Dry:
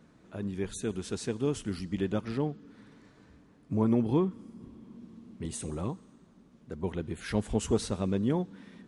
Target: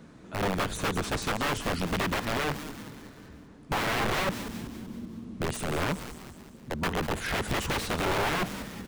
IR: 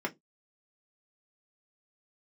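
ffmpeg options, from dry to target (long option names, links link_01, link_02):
-filter_complex "[0:a]aeval=exprs='(mod(33.5*val(0)+1,2)-1)/33.5':channel_layout=same,asplit=6[link_01][link_02][link_03][link_04][link_05][link_06];[link_02]adelay=191,afreqshift=-130,volume=-13.5dB[link_07];[link_03]adelay=382,afreqshift=-260,volume=-19.2dB[link_08];[link_04]adelay=573,afreqshift=-390,volume=-24.9dB[link_09];[link_05]adelay=764,afreqshift=-520,volume=-30.5dB[link_10];[link_06]adelay=955,afreqshift=-650,volume=-36.2dB[link_11];[link_01][link_07][link_08][link_09][link_10][link_11]amix=inputs=6:normalize=0,acrossover=split=3500[link_12][link_13];[link_13]acompressor=threshold=-45dB:ratio=4:attack=1:release=60[link_14];[link_12][link_14]amix=inputs=2:normalize=0,volume=8.5dB"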